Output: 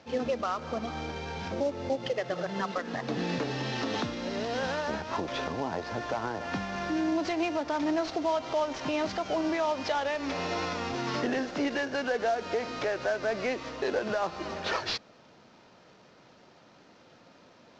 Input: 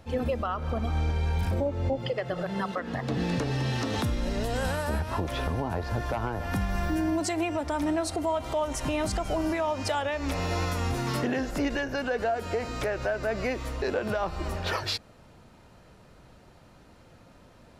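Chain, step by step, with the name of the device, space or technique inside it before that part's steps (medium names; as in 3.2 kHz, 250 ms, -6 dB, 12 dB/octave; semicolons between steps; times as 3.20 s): early wireless headset (high-pass 210 Hz 12 dB/octave; CVSD coder 32 kbps)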